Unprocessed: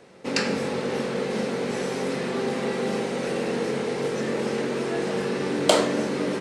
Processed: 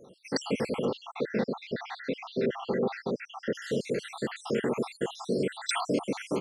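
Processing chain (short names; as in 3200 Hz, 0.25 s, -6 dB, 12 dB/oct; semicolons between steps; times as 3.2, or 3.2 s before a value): random spectral dropouts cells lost 72%; 0.85–3.55 LPF 4200 Hz 24 dB/oct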